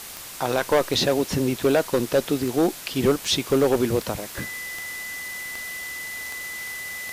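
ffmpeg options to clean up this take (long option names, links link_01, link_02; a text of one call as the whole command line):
ffmpeg -i in.wav -af "adeclick=threshold=4,bandreject=frequency=2000:width=30,afwtdn=0.014" out.wav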